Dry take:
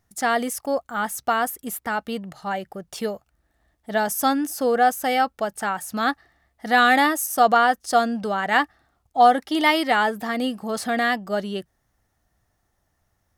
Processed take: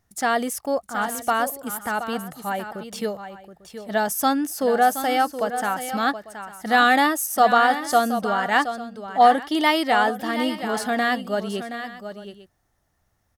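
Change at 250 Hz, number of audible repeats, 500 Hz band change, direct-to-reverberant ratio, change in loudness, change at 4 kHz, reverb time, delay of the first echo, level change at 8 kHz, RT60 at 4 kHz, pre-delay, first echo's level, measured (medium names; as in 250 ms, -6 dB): +0.5 dB, 2, +0.5 dB, no reverb, 0.0 dB, +0.5 dB, no reverb, 723 ms, +0.5 dB, no reverb, no reverb, -10.5 dB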